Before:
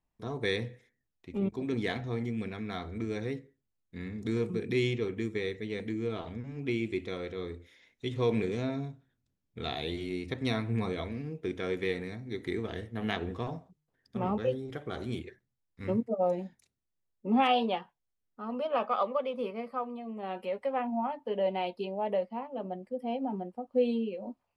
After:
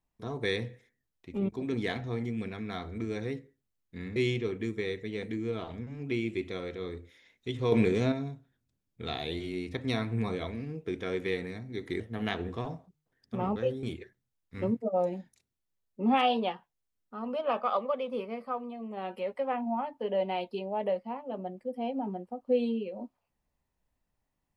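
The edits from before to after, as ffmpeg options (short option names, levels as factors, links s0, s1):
-filter_complex "[0:a]asplit=6[s0][s1][s2][s3][s4][s5];[s0]atrim=end=4.162[s6];[s1]atrim=start=4.728:end=8.292[s7];[s2]atrim=start=8.288:end=8.692,asetpts=PTS-STARTPTS,volume=1.88[s8];[s3]atrim=start=8.688:end=12.572[s9];[s4]atrim=start=12.818:end=14.652[s10];[s5]atrim=start=15.088[s11];[s6][s7]acrossfade=d=0.004:c1=hsin:c2=hsin[s12];[s12][s8]acrossfade=d=0.004:c1=hsin:c2=hsin[s13];[s13][s9]acrossfade=d=0.004:c1=hsin:c2=hsin[s14];[s14][s10]acrossfade=d=0.004:c1=hsin:c2=hsin[s15];[s15][s11]acrossfade=d=0.004:c1=hsin:c2=hsin"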